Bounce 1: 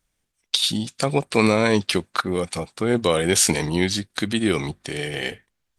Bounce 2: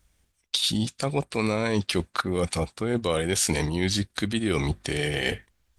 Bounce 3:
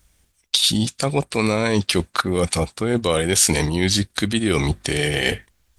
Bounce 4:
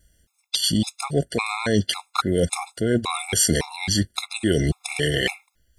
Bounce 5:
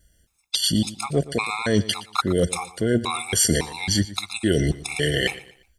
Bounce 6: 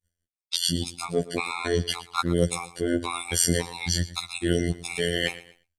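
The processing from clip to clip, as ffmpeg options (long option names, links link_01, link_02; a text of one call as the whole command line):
ffmpeg -i in.wav -af "equalizer=frequency=60:width=1.4:gain=13,areverse,acompressor=threshold=-29dB:ratio=4,areverse,volume=5.5dB" out.wav
ffmpeg -i in.wav -af "highshelf=frequency=4900:gain=4.5,volume=5.5dB" out.wav
ffmpeg -i in.wav -af "afftfilt=real='re*gt(sin(2*PI*1.8*pts/sr)*(1-2*mod(floor(b*sr/1024/690),2)),0)':imag='im*gt(sin(2*PI*1.8*pts/sr)*(1-2*mod(floor(b*sr/1024/690),2)),0)':win_size=1024:overlap=0.75" out.wav
ffmpeg -i in.wav -af "aecho=1:1:118|236|354:0.133|0.0453|0.0154" out.wav
ffmpeg -i in.wav -af "agate=range=-33dB:threshold=-47dB:ratio=3:detection=peak,afftfilt=real='hypot(re,im)*cos(PI*b)':imag='0':win_size=2048:overlap=0.75" out.wav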